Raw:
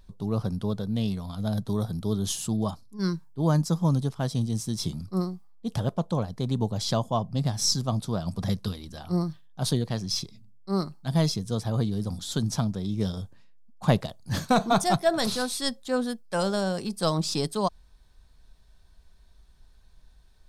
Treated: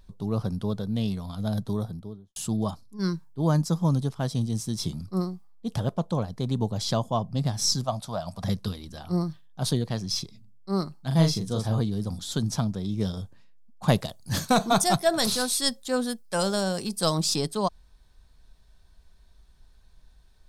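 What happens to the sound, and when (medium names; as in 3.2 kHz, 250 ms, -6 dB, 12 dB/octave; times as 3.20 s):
1.59–2.36 s: studio fade out
7.84–8.44 s: resonant low shelf 510 Hz -6.5 dB, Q 3
11.07–11.80 s: doubling 37 ms -4 dB
13.88–17.36 s: treble shelf 4.8 kHz +9 dB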